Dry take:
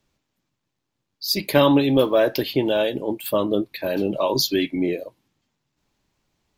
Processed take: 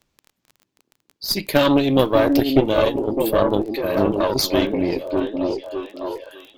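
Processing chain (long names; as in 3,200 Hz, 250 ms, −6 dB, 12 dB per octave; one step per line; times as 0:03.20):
surface crackle 17 per second −33 dBFS
echo through a band-pass that steps 603 ms, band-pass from 300 Hz, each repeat 0.7 octaves, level −1 dB
harmonic generator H 4 −13 dB, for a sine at −2 dBFS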